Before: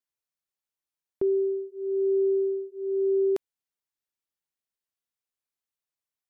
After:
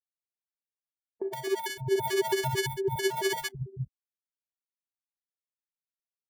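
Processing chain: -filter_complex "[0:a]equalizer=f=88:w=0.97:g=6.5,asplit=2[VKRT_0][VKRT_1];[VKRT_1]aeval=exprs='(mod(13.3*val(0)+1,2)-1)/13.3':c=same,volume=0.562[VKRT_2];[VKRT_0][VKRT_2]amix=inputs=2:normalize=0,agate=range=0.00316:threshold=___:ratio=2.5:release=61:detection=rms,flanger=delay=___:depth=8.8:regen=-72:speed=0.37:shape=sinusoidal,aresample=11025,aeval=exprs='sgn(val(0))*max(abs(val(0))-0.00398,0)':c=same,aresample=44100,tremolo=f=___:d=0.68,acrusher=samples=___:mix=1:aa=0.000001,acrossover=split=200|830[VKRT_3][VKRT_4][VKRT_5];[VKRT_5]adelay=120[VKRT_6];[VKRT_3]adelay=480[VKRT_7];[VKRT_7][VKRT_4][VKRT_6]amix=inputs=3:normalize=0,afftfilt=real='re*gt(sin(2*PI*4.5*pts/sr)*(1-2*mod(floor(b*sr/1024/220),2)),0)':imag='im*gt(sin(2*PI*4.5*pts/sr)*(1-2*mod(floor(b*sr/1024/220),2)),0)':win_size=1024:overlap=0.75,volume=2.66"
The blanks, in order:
0.0178, 8, 15, 34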